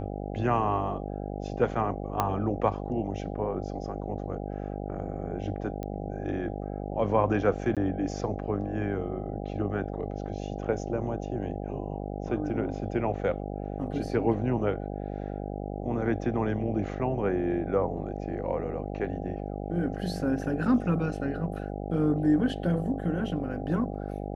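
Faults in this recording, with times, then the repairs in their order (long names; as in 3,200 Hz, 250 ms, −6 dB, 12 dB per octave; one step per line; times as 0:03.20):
mains buzz 50 Hz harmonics 16 −35 dBFS
0:02.20: click −12 dBFS
0:05.83: click −24 dBFS
0:07.75–0:07.77: drop-out 17 ms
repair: click removal
hum removal 50 Hz, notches 16
repair the gap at 0:07.75, 17 ms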